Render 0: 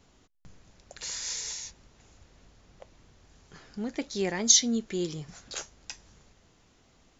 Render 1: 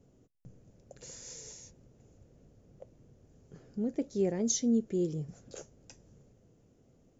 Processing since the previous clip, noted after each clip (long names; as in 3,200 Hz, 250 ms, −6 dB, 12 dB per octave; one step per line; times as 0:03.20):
octave-band graphic EQ 125/250/500/1,000/2,000/4,000 Hz +11/+5/+10/−8/−6/−11 dB
level −7.5 dB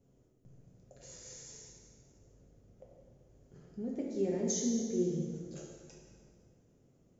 dense smooth reverb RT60 1.9 s, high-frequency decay 0.8×, DRR −3 dB
level −7.5 dB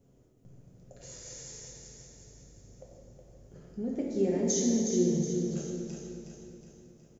repeating echo 367 ms, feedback 49%, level −6.5 dB
level +4.5 dB